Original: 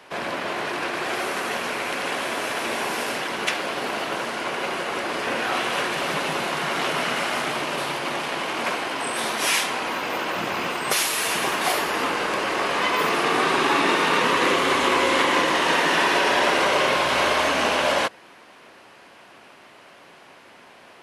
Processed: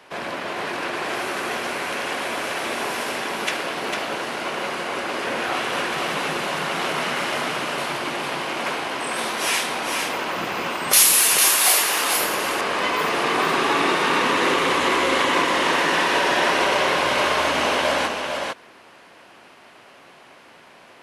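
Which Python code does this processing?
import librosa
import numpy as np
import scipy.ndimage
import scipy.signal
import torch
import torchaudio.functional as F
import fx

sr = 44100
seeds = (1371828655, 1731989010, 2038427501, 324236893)

p1 = fx.riaa(x, sr, side='recording', at=(10.93, 12.16))
p2 = p1 + fx.echo_single(p1, sr, ms=452, db=-4.5, dry=0)
y = p2 * 10.0 ** (-1.0 / 20.0)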